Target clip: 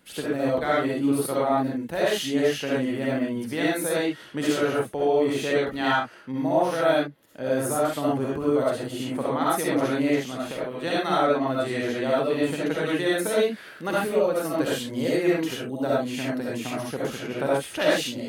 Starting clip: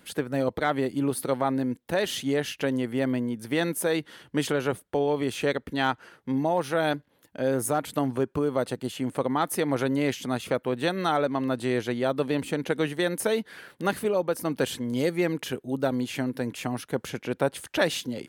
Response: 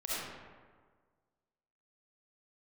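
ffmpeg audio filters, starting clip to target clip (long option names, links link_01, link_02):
-filter_complex "[0:a]asplit=3[link_01][link_02][link_03];[link_01]afade=type=out:start_time=10.09:duration=0.02[link_04];[link_02]acompressor=threshold=-28dB:ratio=6,afade=type=in:start_time=10.09:duration=0.02,afade=type=out:start_time=10.83:duration=0.02[link_05];[link_03]afade=type=in:start_time=10.83:duration=0.02[link_06];[link_04][link_05][link_06]amix=inputs=3:normalize=0[link_07];[1:a]atrim=start_sample=2205,atrim=end_sample=6174[link_08];[link_07][link_08]afir=irnorm=-1:irlink=0"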